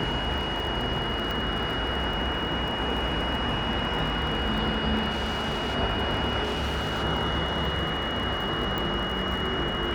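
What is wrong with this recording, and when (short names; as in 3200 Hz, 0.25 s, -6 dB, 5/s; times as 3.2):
crackle 43/s -33 dBFS
tone 2900 Hz -32 dBFS
1.31 pop
5.1–5.76 clipped -24.5 dBFS
6.43–7.04 clipped -25 dBFS
8.78 pop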